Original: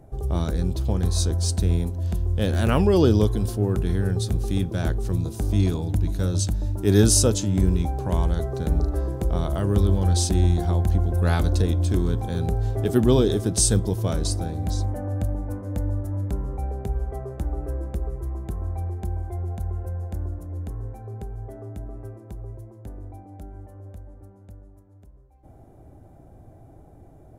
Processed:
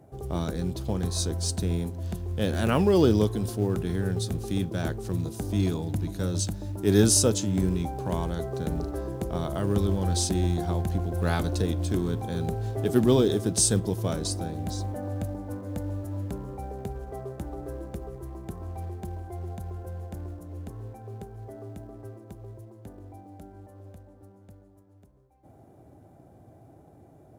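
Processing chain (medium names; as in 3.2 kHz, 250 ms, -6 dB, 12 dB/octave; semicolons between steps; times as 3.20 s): high-pass 110 Hz 12 dB/octave; in parallel at -11 dB: short-mantissa float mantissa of 2-bit; on the sum: trim -4 dB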